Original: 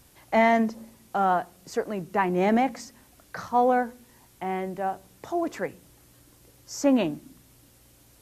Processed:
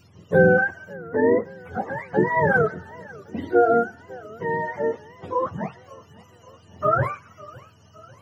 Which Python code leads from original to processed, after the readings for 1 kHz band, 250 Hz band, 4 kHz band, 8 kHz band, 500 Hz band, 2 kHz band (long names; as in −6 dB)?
0.0 dB, −1.0 dB, below −10 dB, below −15 dB, +6.0 dB, +8.5 dB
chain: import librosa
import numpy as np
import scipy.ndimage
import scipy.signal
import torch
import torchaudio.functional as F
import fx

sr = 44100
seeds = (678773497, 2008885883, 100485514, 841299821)

y = fx.octave_mirror(x, sr, pivot_hz=590.0)
y = fx.spec_erase(y, sr, start_s=0.93, length_s=0.52, low_hz=2100.0, high_hz=12000.0)
y = fx.echo_warbled(y, sr, ms=554, feedback_pct=57, rate_hz=2.8, cents=156, wet_db=-22.0)
y = y * librosa.db_to_amplitude(5.0)